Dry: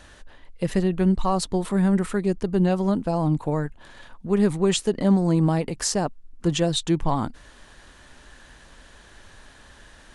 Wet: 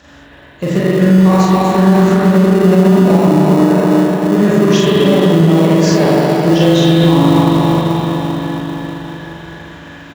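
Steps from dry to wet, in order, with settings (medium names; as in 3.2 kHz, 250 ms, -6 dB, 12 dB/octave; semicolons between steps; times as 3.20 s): knee-point frequency compression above 3.8 kHz 1.5:1; on a send: early reflections 36 ms -3.5 dB, 57 ms -6 dB; on the sum: reverberation RT60 5.4 s, pre-delay 39 ms, DRR -9 dB; in parallel at -11.5 dB: sample-rate reducer 1.6 kHz, jitter 0%; on the sum: high-pass 66 Hz 24 dB/octave; peak limiter -4.5 dBFS, peak gain reduction 7 dB; trim +3.5 dB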